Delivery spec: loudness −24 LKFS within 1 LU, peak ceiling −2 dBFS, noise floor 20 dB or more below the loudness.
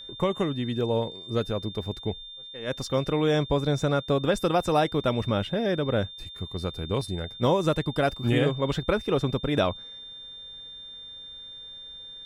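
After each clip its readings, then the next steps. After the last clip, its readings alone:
interfering tone 3,600 Hz; level of the tone −40 dBFS; integrated loudness −27.0 LKFS; sample peak −10.0 dBFS; target loudness −24.0 LKFS
→ notch filter 3,600 Hz, Q 30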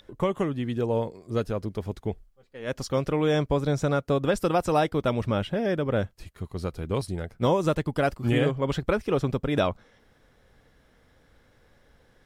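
interfering tone none found; integrated loudness −27.0 LKFS; sample peak −10.0 dBFS; target loudness −24.0 LKFS
→ level +3 dB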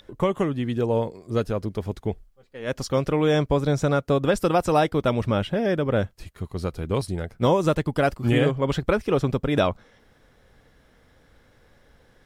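integrated loudness −24.0 LKFS; sample peak −7.0 dBFS; background noise floor −59 dBFS

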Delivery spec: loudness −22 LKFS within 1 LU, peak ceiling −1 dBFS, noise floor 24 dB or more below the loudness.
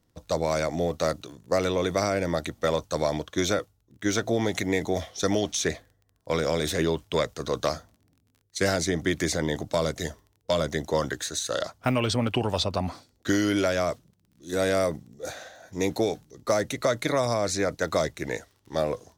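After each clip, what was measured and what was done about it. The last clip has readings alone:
crackle rate 25 per second; integrated loudness −27.5 LKFS; sample peak −12.5 dBFS; target loudness −22.0 LKFS
→ click removal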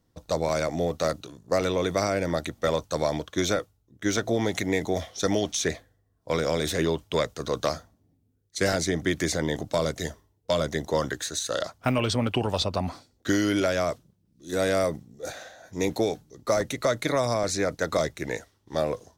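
crackle rate 0.26 per second; integrated loudness −27.5 LKFS; sample peak −12.5 dBFS; target loudness −22.0 LKFS
→ level +5.5 dB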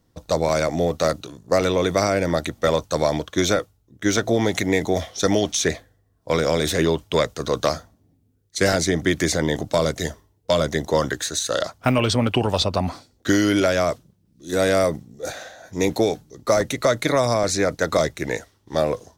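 integrated loudness −22.0 LKFS; sample peak −7.0 dBFS; background noise floor −64 dBFS

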